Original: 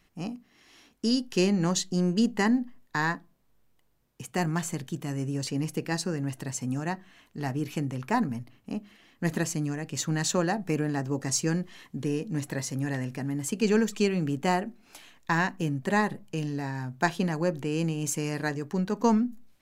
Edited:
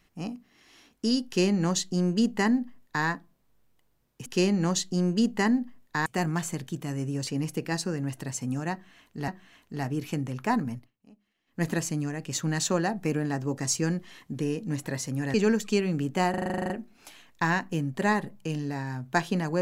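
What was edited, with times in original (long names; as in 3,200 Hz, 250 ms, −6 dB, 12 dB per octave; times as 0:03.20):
0:01.26–0:03.06: duplicate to 0:04.26
0:06.92–0:07.48: repeat, 2 plays
0:08.39–0:09.26: duck −21.5 dB, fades 0.16 s
0:12.98–0:13.62: remove
0:14.58: stutter 0.04 s, 11 plays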